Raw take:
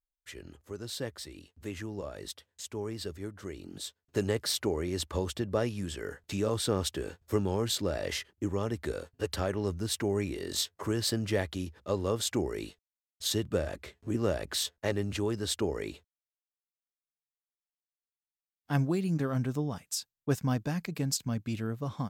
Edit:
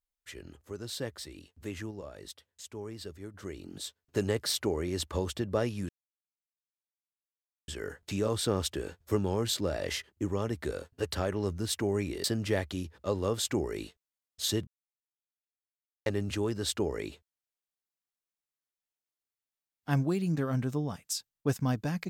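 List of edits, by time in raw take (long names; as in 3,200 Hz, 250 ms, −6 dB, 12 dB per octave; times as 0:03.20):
0:01.91–0:03.34: clip gain −4.5 dB
0:05.89: splice in silence 1.79 s
0:10.45–0:11.06: remove
0:13.49–0:14.88: silence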